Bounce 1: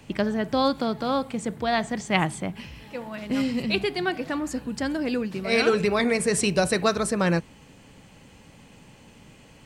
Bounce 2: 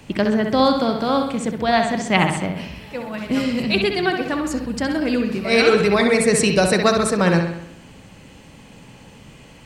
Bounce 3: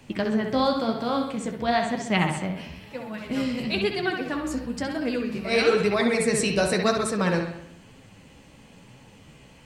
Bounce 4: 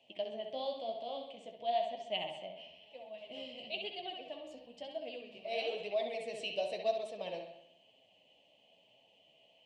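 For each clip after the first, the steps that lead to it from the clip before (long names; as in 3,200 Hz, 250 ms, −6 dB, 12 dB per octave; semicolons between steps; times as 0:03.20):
bucket-brigade delay 65 ms, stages 2,048, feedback 55%, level −6 dB; level +5 dB
flanger 1 Hz, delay 7 ms, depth 9.5 ms, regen +37%; level −2.5 dB
pair of resonant band-passes 1,400 Hz, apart 2.2 octaves; level −4 dB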